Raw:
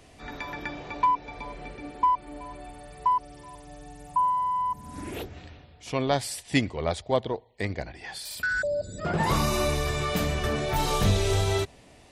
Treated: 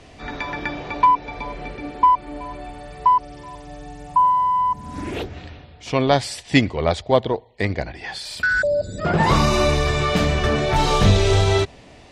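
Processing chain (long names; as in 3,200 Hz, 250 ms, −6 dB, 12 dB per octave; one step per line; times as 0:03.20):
low-pass filter 6,000 Hz 12 dB per octave
level +8 dB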